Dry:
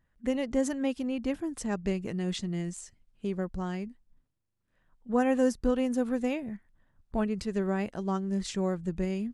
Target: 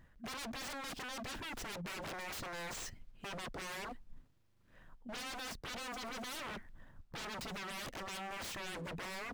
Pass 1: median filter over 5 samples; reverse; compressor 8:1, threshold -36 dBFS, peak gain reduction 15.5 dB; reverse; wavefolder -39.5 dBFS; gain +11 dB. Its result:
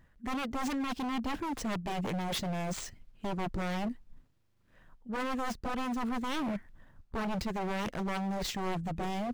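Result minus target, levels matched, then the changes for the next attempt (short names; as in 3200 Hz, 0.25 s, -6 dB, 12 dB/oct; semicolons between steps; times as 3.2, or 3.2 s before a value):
wavefolder: distortion -21 dB
change: wavefolder -50 dBFS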